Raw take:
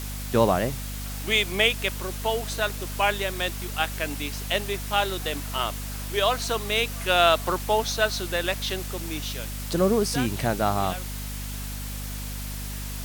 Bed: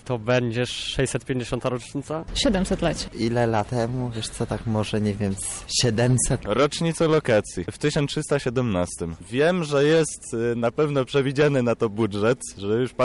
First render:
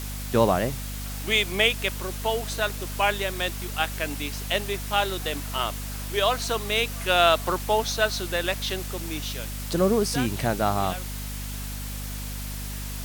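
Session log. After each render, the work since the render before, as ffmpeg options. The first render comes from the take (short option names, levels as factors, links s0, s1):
-af anull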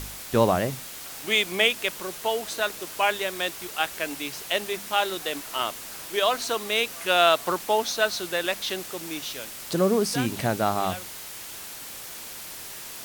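-af "bandreject=f=50:t=h:w=4,bandreject=f=100:t=h:w=4,bandreject=f=150:t=h:w=4,bandreject=f=200:t=h:w=4,bandreject=f=250:t=h:w=4"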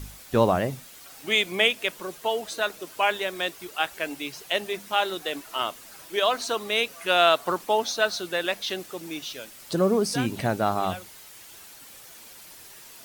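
-af "afftdn=nr=9:nf=-39"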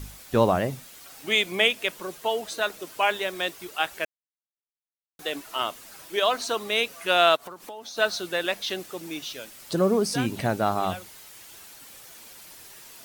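-filter_complex "[0:a]asettb=1/sr,asplit=3[s0][s1][s2];[s0]atrim=end=2.584[s3];[s1]atrim=start=2.58:end=3.54,asetpts=PTS-STARTPTS,afade=t=in:d=0.004:c=qsin,afade=t=out:st=0.956:d=0.004:c=qsin,acrusher=bits=7:mix=0:aa=0.5[s4];[s2]atrim=start=3.536[s5];[s3][s4]acrossfade=d=0.004:c1=hsin:c2=qsin[s6];[s6][s5]acrossfade=d=0.004:c1=qsin:c2=hsin,asplit=3[s7][s8][s9];[s7]afade=t=out:st=7.35:d=0.02[s10];[s8]acompressor=threshold=0.0158:ratio=8:attack=3.2:release=140:knee=1:detection=peak,afade=t=in:st=7.35:d=0.02,afade=t=out:st=7.96:d=0.02[s11];[s9]afade=t=in:st=7.96:d=0.02[s12];[s10][s11][s12]amix=inputs=3:normalize=0,asplit=3[s13][s14][s15];[s13]atrim=end=4.05,asetpts=PTS-STARTPTS,afade=t=out:st=4.046:d=0.004:c=hsin[s16];[s14]atrim=start=4.05:end=5.19,asetpts=PTS-STARTPTS,volume=0[s17];[s15]atrim=start=5.19,asetpts=PTS-STARTPTS,afade=t=in:d=0.004:c=hsin[s18];[s16][s17][s18]concat=n=3:v=0:a=1"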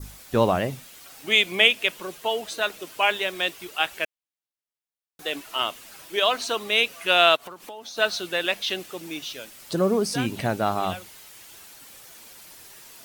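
-af "adynamicequalizer=threshold=0.0141:dfrequency=2800:dqfactor=1.7:tfrequency=2800:tqfactor=1.7:attack=5:release=100:ratio=0.375:range=3:mode=boostabove:tftype=bell"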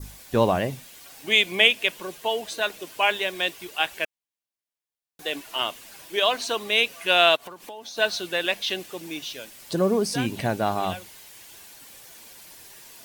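-af "bandreject=f=1300:w=10"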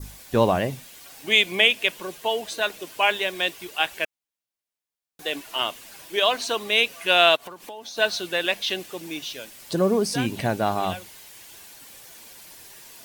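-af "volume=1.12,alimiter=limit=0.708:level=0:latency=1"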